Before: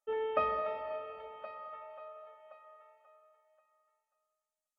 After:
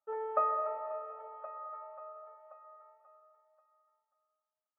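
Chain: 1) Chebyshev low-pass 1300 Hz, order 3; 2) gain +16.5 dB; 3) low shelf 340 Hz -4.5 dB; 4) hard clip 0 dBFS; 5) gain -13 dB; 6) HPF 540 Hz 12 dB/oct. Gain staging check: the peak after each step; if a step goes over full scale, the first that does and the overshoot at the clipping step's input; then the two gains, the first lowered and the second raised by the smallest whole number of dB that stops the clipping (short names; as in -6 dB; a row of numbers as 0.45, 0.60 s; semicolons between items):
-17.5, -1.0, -2.0, -2.0, -15.0, -16.5 dBFS; no overload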